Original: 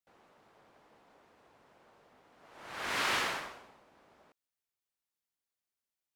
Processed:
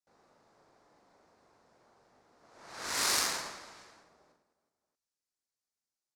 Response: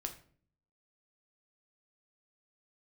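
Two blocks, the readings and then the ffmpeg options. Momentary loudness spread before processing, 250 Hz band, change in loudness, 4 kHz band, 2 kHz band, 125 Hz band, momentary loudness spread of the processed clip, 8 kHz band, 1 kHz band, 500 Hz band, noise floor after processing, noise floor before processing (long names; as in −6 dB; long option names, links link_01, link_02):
17 LU, −1.5 dB, +2.5 dB, +3.5 dB, −3.0 dB, −2.0 dB, 20 LU, +11.5 dB, −2.0 dB, −2.0 dB, below −85 dBFS, below −85 dBFS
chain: -af "aecho=1:1:40|104|206.4|370.2|632.4:0.631|0.398|0.251|0.158|0.1,adynamicsmooth=sensitivity=3.5:basefreq=2900,aexciter=amount=11.7:drive=4.2:freq=4500,volume=-4dB"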